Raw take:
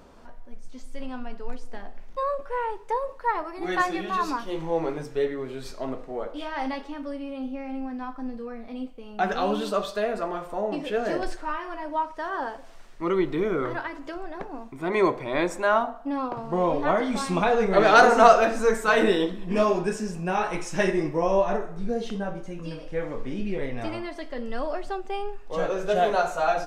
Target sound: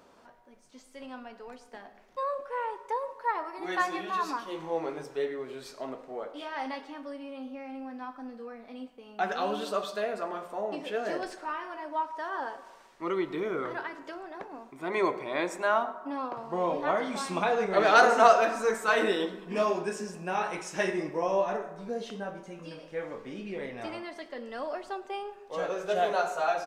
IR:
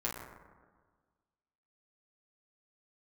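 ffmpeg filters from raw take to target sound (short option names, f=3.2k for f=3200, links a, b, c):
-filter_complex "[0:a]highpass=f=370:p=1,asplit=2[a][b];[b]aecho=1:1:5.3:0.65[c];[1:a]atrim=start_sample=2205,adelay=102[d];[c][d]afir=irnorm=-1:irlink=0,volume=-21.5dB[e];[a][e]amix=inputs=2:normalize=0,volume=-3.5dB"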